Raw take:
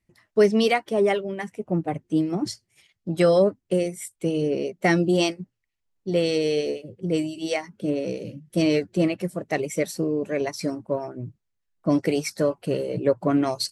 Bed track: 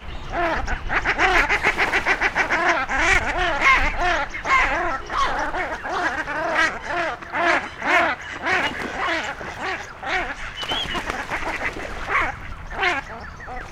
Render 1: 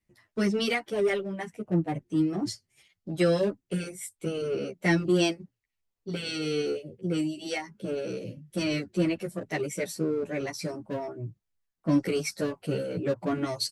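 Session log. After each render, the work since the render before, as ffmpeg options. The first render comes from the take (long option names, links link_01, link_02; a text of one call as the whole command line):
ffmpeg -i in.wav -filter_complex "[0:a]acrossover=split=430|1100[link_01][link_02][link_03];[link_02]volume=33.5dB,asoftclip=hard,volume=-33.5dB[link_04];[link_01][link_04][link_03]amix=inputs=3:normalize=0,asplit=2[link_05][link_06];[link_06]adelay=10.3,afreqshift=-2.6[link_07];[link_05][link_07]amix=inputs=2:normalize=1" out.wav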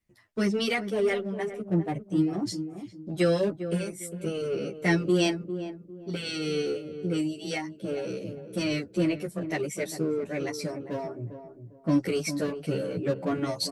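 ffmpeg -i in.wav -filter_complex "[0:a]asplit=2[link_01][link_02];[link_02]adelay=402,lowpass=frequency=810:poles=1,volume=-9dB,asplit=2[link_03][link_04];[link_04]adelay=402,lowpass=frequency=810:poles=1,volume=0.31,asplit=2[link_05][link_06];[link_06]adelay=402,lowpass=frequency=810:poles=1,volume=0.31,asplit=2[link_07][link_08];[link_08]adelay=402,lowpass=frequency=810:poles=1,volume=0.31[link_09];[link_01][link_03][link_05][link_07][link_09]amix=inputs=5:normalize=0" out.wav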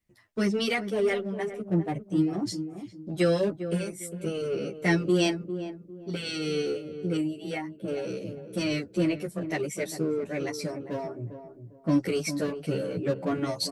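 ffmpeg -i in.wav -filter_complex "[0:a]asettb=1/sr,asplit=3[link_01][link_02][link_03];[link_01]atrim=end=7.174[link_04];[link_02]atrim=start=7.17:end=7.88,asetpts=PTS-STARTPTS,afade=type=in:duration=0.004:curve=qsin,afade=type=out:start_time=0.706:duration=0.004:curve=qsin,equalizer=frequency=5600:width_type=o:width=1.3:gain=-13[link_05];[link_03]atrim=start=7.876[link_06];[link_04][link_05]acrossfade=duration=0.004:curve1=hsin:curve2=qsin[link_07];[link_07][link_06]acrossfade=duration=0.004:curve1=qsin:curve2=hsin" out.wav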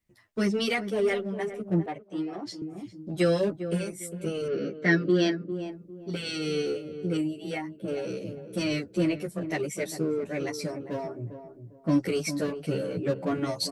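ffmpeg -i in.wav -filter_complex "[0:a]asettb=1/sr,asplit=3[link_01][link_02][link_03];[link_01]atrim=end=1.864[link_04];[link_02]atrim=start=1.86:end=2.62,asetpts=PTS-STARTPTS,afade=type=in:duration=0.004:curve=qsin,afade=type=out:start_time=0.756:duration=0.004:curve=qsin,acrossover=split=370 4900:gain=0.158 1 0.224[link_05][link_06][link_07];[link_05][link_06][link_07]amix=inputs=3:normalize=0[link_08];[link_03]atrim=start=2.616[link_09];[link_04][link_08]acrossfade=duration=0.004:curve1=hsin:curve2=qsin[link_10];[link_10][link_09]acrossfade=duration=0.004:curve1=qsin:curve2=hsin,asettb=1/sr,asplit=3[link_11][link_12][link_13];[link_11]atrim=end=4.484[link_14];[link_12]atrim=start=4.48:end=5.52,asetpts=PTS-STARTPTS,afade=type=in:duration=0.004:curve=qsin,afade=type=out:start_time=1.036:duration=0.004:curve=qsin,highpass=120,equalizer=frequency=270:width_type=q:width=4:gain=6,equalizer=frequency=860:width_type=q:width=4:gain=-9,equalizer=frequency=1700:width_type=q:width=4:gain=9,equalizer=frequency=2600:width_type=q:width=4:gain=-8,lowpass=frequency=5100:width=0.5412,lowpass=frequency=5100:width=1.3066[link_15];[link_13]atrim=start=5.516[link_16];[link_14][link_15]acrossfade=duration=0.004:curve1=hsin:curve2=qsin[link_17];[link_17][link_16]acrossfade=duration=0.004:curve1=qsin:curve2=hsin" out.wav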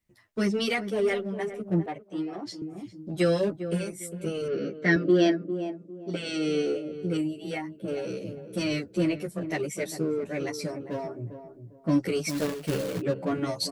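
ffmpeg -i in.wav -filter_complex "[0:a]asettb=1/sr,asplit=3[link_01][link_02][link_03];[link_01]atrim=end=4.964[link_04];[link_02]atrim=start=4.96:end=6.94,asetpts=PTS-STARTPTS,afade=type=in:duration=0.004:curve=qsin,afade=type=out:start_time=1.976:duration=0.004:curve=qsin,highpass=130,equalizer=frequency=310:width_type=q:width=4:gain=5,equalizer=frequency=630:width_type=q:width=4:gain=9,equalizer=frequency=4300:width_type=q:width=4:gain=-4,lowpass=frequency=9100:width=0.5412,lowpass=frequency=9100:width=1.3066[link_05];[link_03]atrim=start=6.936[link_06];[link_04][link_05]acrossfade=duration=0.004:curve1=hsin:curve2=qsin[link_07];[link_07][link_06]acrossfade=duration=0.004:curve1=qsin:curve2=hsin,asplit=3[link_08][link_09][link_10];[link_08]afade=type=out:start_time=12.28:duration=0.02[link_11];[link_09]acrusher=bits=2:mode=log:mix=0:aa=0.000001,afade=type=in:start_time=12.28:duration=0.02,afade=type=out:start_time=13:duration=0.02[link_12];[link_10]afade=type=in:start_time=13:duration=0.02[link_13];[link_11][link_12][link_13]amix=inputs=3:normalize=0" out.wav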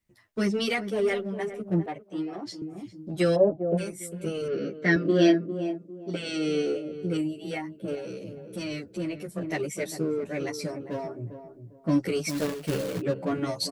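ffmpeg -i in.wav -filter_complex "[0:a]asplit=3[link_01][link_02][link_03];[link_01]afade=type=out:start_time=3.35:duration=0.02[link_04];[link_02]lowpass=frequency=690:width_type=q:width=4.4,afade=type=in:start_time=3.35:duration=0.02,afade=type=out:start_time=3.77:duration=0.02[link_05];[link_03]afade=type=in:start_time=3.77:duration=0.02[link_06];[link_04][link_05][link_06]amix=inputs=3:normalize=0,asplit=3[link_07][link_08][link_09];[link_07]afade=type=out:start_time=5.04:duration=0.02[link_10];[link_08]asplit=2[link_11][link_12];[link_12]adelay=24,volume=-3dB[link_13];[link_11][link_13]amix=inputs=2:normalize=0,afade=type=in:start_time=5.04:duration=0.02,afade=type=out:start_time=5.77:duration=0.02[link_14];[link_09]afade=type=in:start_time=5.77:duration=0.02[link_15];[link_10][link_14][link_15]amix=inputs=3:normalize=0,asettb=1/sr,asplit=3[link_16][link_17][link_18];[link_16]atrim=end=7.954[link_19];[link_17]atrim=start=7.95:end=9.29,asetpts=PTS-STARTPTS,afade=type=in:duration=0.004:curve=qsin,afade=type=out:start_time=1.336:duration=0.004:curve=qsin,acompressor=threshold=-39dB:ratio=1.5:attack=3.2:release=140:knee=1:detection=peak[link_20];[link_18]atrim=start=9.286[link_21];[link_19][link_20]acrossfade=duration=0.004:curve1=hsin:curve2=qsin[link_22];[link_22][link_21]acrossfade=duration=0.004:curve1=qsin:curve2=hsin" out.wav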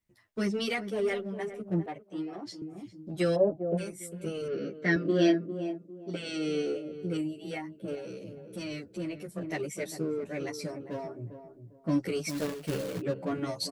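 ffmpeg -i in.wav -af "volume=-4dB" out.wav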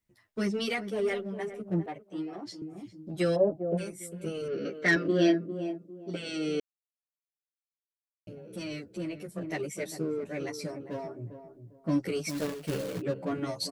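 ffmpeg -i in.wav -filter_complex "[0:a]asettb=1/sr,asplit=3[link_01][link_02][link_03];[link_01]atrim=end=4.654[link_04];[link_02]atrim=start=4.65:end=5.08,asetpts=PTS-STARTPTS,afade=type=in:duration=0.004:curve=qsin,afade=type=out:start_time=0.426:duration=0.004:curve=qsin,asplit=2[link_05][link_06];[link_06]highpass=frequency=720:poles=1,volume=13dB,asoftclip=type=tanh:threshold=-15dB[link_07];[link_05][link_07]amix=inputs=2:normalize=0,lowpass=frequency=7200:poles=1,volume=-6dB[link_08];[link_03]atrim=start=5.076[link_09];[link_04][link_08]acrossfade=duration=0.004:curve1=hsin:curve2=qsin[link_10];[link_10][link_09]acrossfade=duration=0.004:curve1=qsin:curve2=hsin,asplit=3[link_11][link_12][link_13];[link_11]atrim=end=6.6,asetpts=PTS-STARTPTS,afade=type=out:start_time=6.596:duration=0.004:curve=hsin[link_14];[link_12]atrim=start=6.6:end=8.27,asetpts=PTS-STARTPTS,volume=0[link_15];[link_13]atrim=start=8.27,asetpts=PTS-STARTPTS,afade=type=in:duration=0.004:curve=hsin[link_16];[link_14][link_15][link_16]concat=n=3:v=0:a=1" out.wav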